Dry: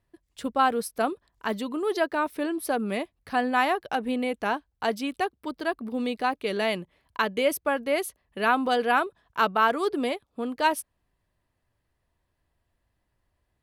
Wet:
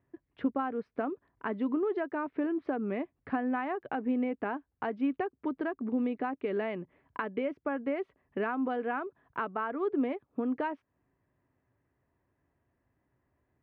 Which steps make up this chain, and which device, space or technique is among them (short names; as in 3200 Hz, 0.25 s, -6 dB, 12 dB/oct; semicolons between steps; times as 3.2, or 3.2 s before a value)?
bass amplifier (compressor 4:1, threshold -33 dBFS, peak gain reduction 14.5 dB; speaker cabinet 78–2200 Hz, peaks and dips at 130 Hz +5 dB, 270 Hz +8 dB, 390 Hz +5 dB)